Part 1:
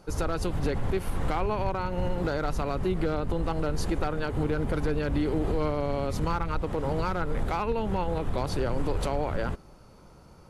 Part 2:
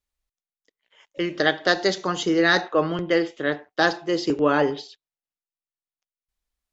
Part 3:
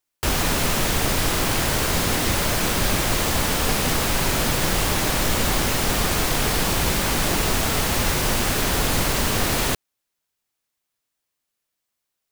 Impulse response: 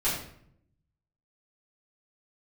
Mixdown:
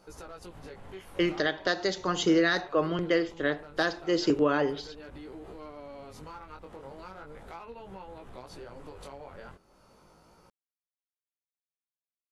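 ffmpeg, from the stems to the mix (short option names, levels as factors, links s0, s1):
-filter_complex "[0:a]lowshelf=f=230:g=-10.5,volume=1.06[s0];[1:a]bandreject=f=830:w=12,volume=0.944[s1];[s0]flanger=delay=15.5:depth=6.8:speed=0.37,acompressor=threshold=0.00282:ratio=2,volume=1[s2];[s1][s2]amix=inputs=2:normalize=0,alimiter=limit=0.188:level=0:latency=1:release=473"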